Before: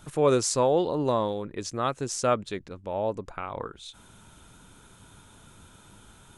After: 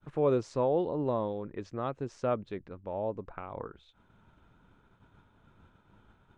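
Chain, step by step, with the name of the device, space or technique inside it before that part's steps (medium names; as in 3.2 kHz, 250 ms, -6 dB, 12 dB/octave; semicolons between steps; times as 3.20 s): dynamic bell 1.5 kHz, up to -6 dB, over -39 dBFS, Q 0.93; hearing-loss simulation (low-pass 2 kHz 12 dB/octave; expander -48 dBFS); trim -4 dB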